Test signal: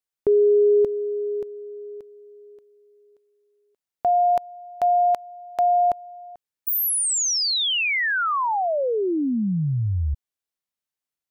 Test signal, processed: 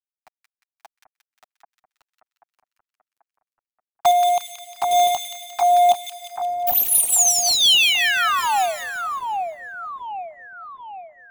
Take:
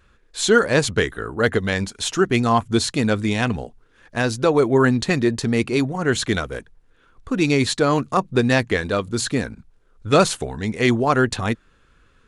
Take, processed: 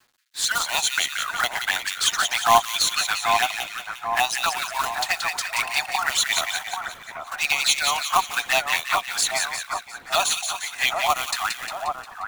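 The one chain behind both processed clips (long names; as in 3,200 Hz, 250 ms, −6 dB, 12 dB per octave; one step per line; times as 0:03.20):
Butterworth high-pass 710 Hz 72 dB per octave
automatic gain control gain up to 6.5 dB
phase shifter 0.4 Hz, delay 1.8 ms, feedback 36%
log-companded quantiser 4 bits
flanger swept by the level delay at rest 8.5 ms, full sweep at −15.5 dBFS
echo with a time of its own for lows and highs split 1,600 Hz, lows 786 ms, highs 177 ms, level −5 dB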